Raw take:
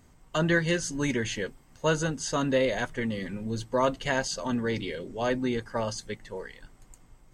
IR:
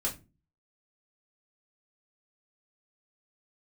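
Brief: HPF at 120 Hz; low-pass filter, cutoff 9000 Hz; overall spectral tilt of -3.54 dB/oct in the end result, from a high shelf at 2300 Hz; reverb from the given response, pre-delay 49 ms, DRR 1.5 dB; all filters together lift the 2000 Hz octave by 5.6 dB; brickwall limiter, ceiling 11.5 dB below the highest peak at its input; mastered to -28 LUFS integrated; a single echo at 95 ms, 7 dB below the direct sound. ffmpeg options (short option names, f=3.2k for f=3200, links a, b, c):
-filter_complex "[0:a]highpass=120,lowpass=9k,equalizer=f=2k:t=o:g=3.5,highshelf=f=2.3k:g=7.5,alimiter=limit=-20dB:level=0:latency=1,aecho=1:1:95:0.447,asplit=2[a][b];[1:a]atrim=start_sample=2205,adelay=49[c];[b][c]afir=irnorm=-1:irlink=0,volume=-6dB[d];[a][d]amix=inputs=2:normalize=0,volume=-0.5dB"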